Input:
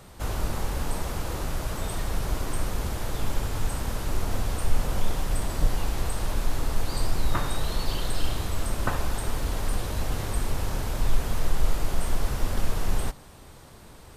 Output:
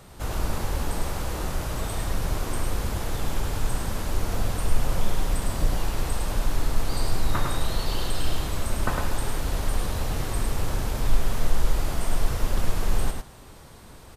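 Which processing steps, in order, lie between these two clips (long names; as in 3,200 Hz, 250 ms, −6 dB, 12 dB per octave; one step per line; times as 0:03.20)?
single-tap delay 105 ms −4 dB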